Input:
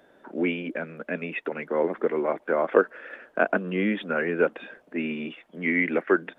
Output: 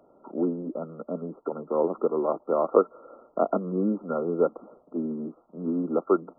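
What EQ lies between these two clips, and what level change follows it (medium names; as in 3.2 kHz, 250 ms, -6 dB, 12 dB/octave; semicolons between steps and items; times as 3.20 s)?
brick-wall FIR low-pass 1.4 kHz; 0.0 dB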